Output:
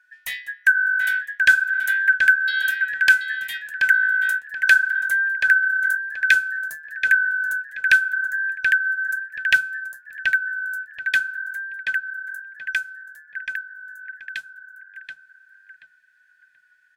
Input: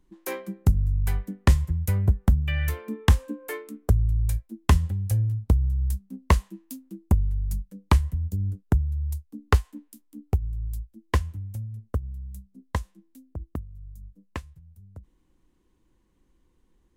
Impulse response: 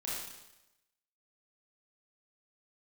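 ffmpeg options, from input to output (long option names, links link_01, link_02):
-filter_complex "[0:a]afftfilt=real='real(if(lt(b,272),68*(eq(floor(b/68),0)*3+eq(floor(b/68),1)*0+eq(floor(b/68),2)*1+eq(floor(b/68),3)*2)+mod(b,68),b),0)':imag='imag(if(lt(b,272),68*(eq(floor(b/68),0)*3+eq(floor(b/68),1)*0+eq(floor(b/68),2)*1+eq(floor(b/68),3)*2)+mod(b,68),b),0)':win_size=2048:overlap=0.75,equalizer=frequency=370:width=3.8:gain=-14.5,bandreject=frequency=60:width_type=h:width=6,bandreject=frequency=120:width_type=h:width=6,bandreject=frequency=180:width_type=h:width=6,asplit=2[link_01][link_02];[link_02]adelay=730,lowpass=frequency=2300:poles=1,volume=-4dB,asplit=2[link_03][link_04];[link_04]adelay=730,lowpass=frequency=2300:poles=1,volume=0.28,asplit=2[link_05][link_06];[link_06]adelay=730,lowpass=frequency=2300:poles=1,volume=0.28,asplit=2[link_07][link_08];[link_08]adelay=730,lowpass=frequency=2300:poles=1,volume=0.28[link_09];[link_03][link_05][link_07][link_09]amix=inputs=4:normalize=0[link_10];[link_01][link_10]amix=inputs=2:normalize=0,volume=2dB"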